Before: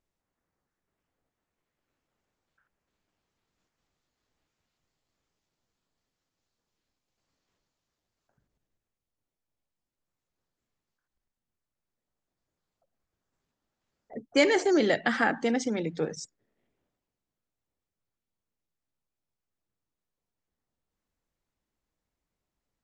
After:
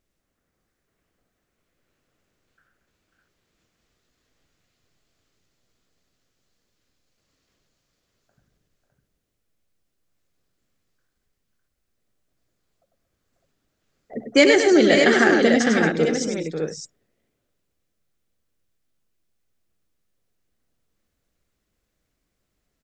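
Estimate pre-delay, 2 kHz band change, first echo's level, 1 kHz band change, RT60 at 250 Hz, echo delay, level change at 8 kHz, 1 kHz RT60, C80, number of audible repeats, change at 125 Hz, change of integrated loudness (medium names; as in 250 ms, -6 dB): no reverb, +10.0 dB, -6.0 dB, +6.0 dB, no reverb, 99 ms, +10.5 dB, no reverb, no reverb, 4, +10.0 dB, +9.0 dB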